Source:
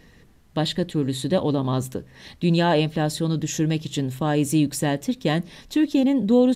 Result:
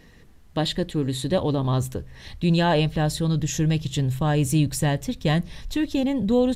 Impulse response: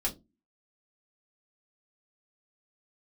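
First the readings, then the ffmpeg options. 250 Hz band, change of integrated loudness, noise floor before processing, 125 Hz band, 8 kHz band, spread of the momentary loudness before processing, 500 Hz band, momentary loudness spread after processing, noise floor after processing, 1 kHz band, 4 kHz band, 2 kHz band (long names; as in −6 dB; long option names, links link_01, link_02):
−2.5 dB, −1.0 dB, −53 dBFS, +2.5 dB, 0.0 dB, 8 LU, −1.5 dB, 6 LU, −50 dBFS, −0.5 dB, 0.0 dB, 0.0 dB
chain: -af "asubboost=boost=9:cutoff=89"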